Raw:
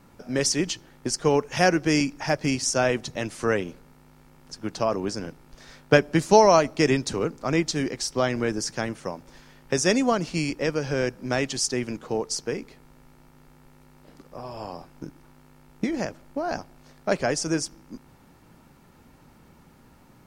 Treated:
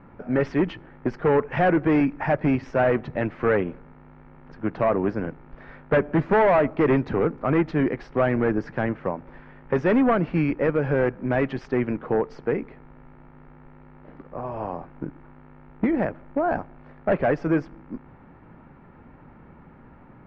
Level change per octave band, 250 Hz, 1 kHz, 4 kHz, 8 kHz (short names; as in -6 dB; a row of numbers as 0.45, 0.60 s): +3.0 dB, 0.0 dB, under -15 dB, under -35 dB